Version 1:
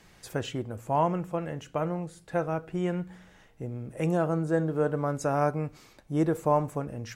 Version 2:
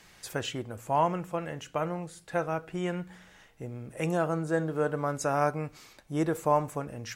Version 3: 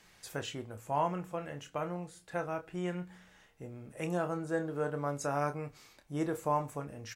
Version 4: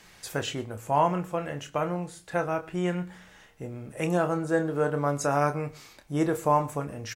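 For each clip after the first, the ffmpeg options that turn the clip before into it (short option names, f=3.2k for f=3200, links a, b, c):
-af "tiltshelf=f=790:g=-4"
-filter_complex "[0:a]asplit=2[a][b];[b]adelay=28,volume=-9dB[c];[a][c]amix=inputs=2:normalize=0,volume=-6dB"
-af "aecho=1:1:118:0.0794,volume=8dB"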